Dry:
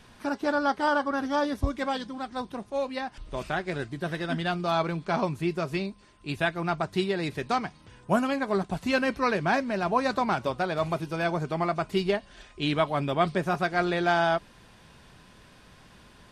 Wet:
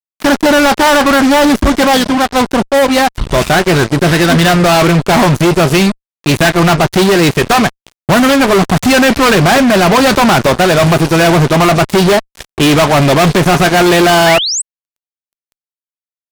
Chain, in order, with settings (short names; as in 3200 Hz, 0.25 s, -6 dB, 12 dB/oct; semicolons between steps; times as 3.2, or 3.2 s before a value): fuzz box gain 39 dB, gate -42 dBFS; painted sound rise, 14.26–14.62, 1600–8600 Hz -22 dBFS; gain +7 dB